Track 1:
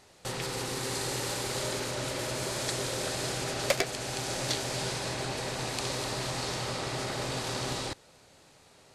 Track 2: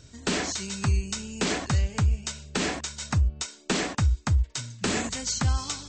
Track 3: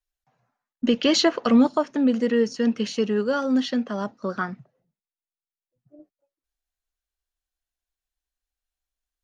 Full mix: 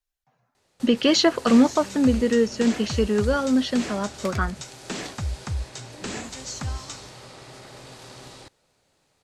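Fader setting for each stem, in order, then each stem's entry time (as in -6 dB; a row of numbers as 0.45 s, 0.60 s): -10.0 dB, -6.0 dB, +1.0 dB; 0.55 s, 1.20 s, 0.00 s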